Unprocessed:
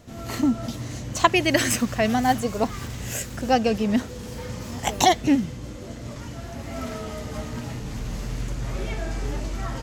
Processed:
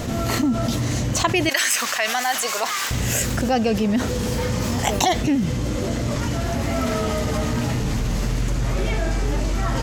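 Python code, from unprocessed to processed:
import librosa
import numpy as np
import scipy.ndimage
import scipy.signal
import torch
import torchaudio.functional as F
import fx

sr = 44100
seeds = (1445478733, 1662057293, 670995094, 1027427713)

y = fx.highpass(x, sr, hz=1100.0, slope=12, at=(1.49, 2.91))
y = fx.env_flatten(y, sr, amount_pct=70)
y = y * 10.0 ** (-4.0 / 20.0)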